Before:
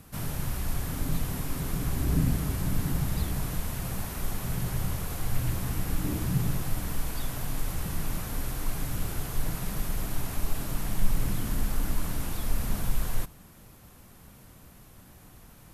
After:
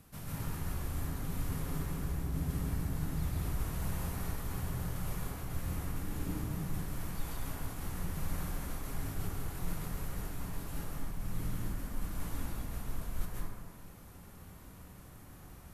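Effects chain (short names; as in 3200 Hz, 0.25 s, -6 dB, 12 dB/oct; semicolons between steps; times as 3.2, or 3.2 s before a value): reverse; compressor, threshold -31 dBFS, peak gain reduction 16 dB; reverse; plate-style reverb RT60 1.5 s, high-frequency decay 0.4×, pre-delay 0.12 s, DRR -6 dB; gain -8 dB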